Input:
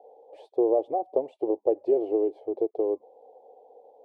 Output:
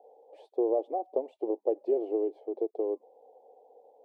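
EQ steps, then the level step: brick-wall FIR high-pass 190 Hz; -4.5 dB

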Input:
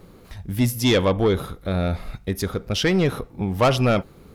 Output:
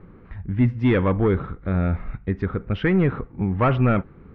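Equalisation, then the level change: LPF 2000 Hz 24 dB/oct; bell 630 Hz -8 dB 1.2 oct; +2.5 dB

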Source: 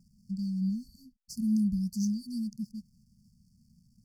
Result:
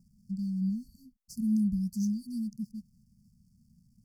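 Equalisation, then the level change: bell 2700 Hz -14 dB 1.6 oct; 0.0 dB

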